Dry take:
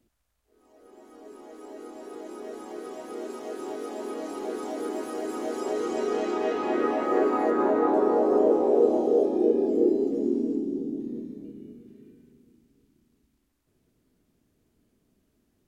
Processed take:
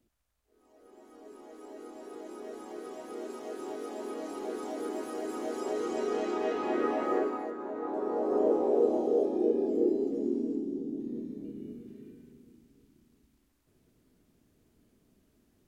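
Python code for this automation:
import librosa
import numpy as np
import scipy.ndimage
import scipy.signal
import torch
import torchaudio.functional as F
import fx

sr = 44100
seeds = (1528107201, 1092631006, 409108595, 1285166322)

y = fx.gain(x, sr, db=fx.line((7.11, -4.0), (7.6, -16.0), (8.46, -5.0), (10.84, -5.0), (11.72, 2.0)))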